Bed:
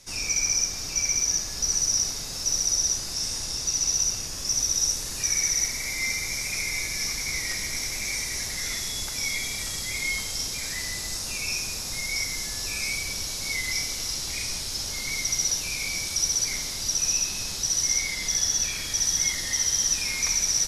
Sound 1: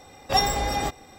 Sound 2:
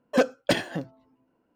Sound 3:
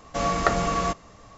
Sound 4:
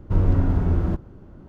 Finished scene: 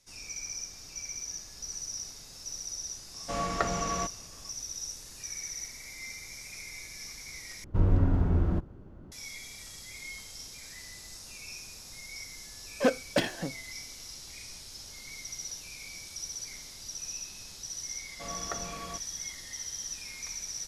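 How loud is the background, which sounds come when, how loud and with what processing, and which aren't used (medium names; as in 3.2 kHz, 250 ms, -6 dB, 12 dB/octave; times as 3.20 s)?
bed -14.5 dB
3.14 s: add 3 -7.5 dB
7.64 s: replace with 4 -5 dB
12.67 s: add 2 -4 dB
18.05 s: add 3 -16.5 dB
not used: 1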